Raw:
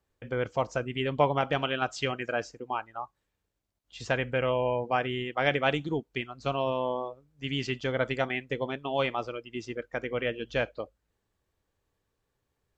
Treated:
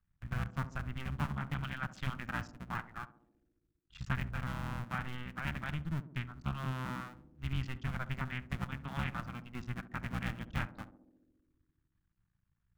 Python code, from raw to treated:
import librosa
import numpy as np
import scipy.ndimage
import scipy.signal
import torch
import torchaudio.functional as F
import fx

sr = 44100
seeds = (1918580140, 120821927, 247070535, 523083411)

y = fx.cycle_switch(x, sr, every=2, mode='muted')
y = fx.curve_eq(y, sr, hz=(170.0, 460.0, 1400.0, 4700.0), db=(0, -29, -8, -20))
y = fx.rider(y, sr, range_db=4, speed_s=0.5)
y = fx.echo_banded(y, sr, ms=68, feedback_pct=81, hz=340.0, wet_db=-10.0)
y = y * 10.0 ** (4.5 / 20.0)